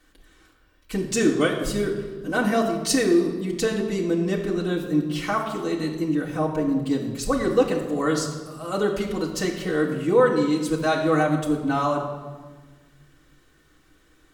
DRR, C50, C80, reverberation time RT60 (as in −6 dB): −6.5 dB, 6.0 dB, 8.0 dB, 1.4 s